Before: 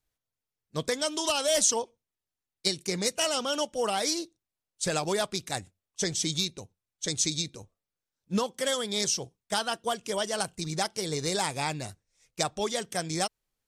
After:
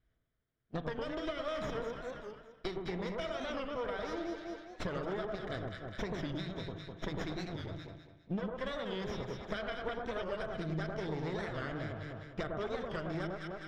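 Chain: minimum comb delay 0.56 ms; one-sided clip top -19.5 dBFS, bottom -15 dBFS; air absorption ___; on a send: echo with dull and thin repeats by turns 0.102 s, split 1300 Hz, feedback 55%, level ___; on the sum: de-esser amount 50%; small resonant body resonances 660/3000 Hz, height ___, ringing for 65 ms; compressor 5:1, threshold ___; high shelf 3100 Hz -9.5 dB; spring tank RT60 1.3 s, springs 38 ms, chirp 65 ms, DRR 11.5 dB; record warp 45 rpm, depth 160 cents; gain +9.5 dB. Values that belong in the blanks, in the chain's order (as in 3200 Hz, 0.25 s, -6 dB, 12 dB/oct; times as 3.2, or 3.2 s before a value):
250 m, -2.5 dB, 8 dB, -46 dBFS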